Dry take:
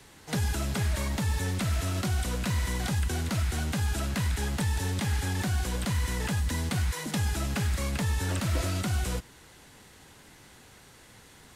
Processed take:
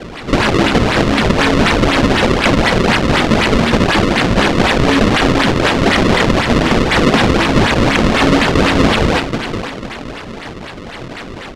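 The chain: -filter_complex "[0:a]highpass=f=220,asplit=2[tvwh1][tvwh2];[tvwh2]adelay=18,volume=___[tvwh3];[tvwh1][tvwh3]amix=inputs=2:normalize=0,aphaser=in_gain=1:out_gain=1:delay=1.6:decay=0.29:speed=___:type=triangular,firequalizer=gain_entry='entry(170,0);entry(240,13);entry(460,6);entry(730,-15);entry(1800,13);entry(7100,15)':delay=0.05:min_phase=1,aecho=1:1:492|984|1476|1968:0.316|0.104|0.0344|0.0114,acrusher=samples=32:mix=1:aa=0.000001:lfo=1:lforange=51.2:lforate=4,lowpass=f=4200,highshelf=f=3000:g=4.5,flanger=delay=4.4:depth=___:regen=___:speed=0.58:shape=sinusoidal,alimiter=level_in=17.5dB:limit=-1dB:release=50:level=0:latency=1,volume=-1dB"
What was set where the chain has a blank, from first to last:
-5dB, 1.8, 1.6, -90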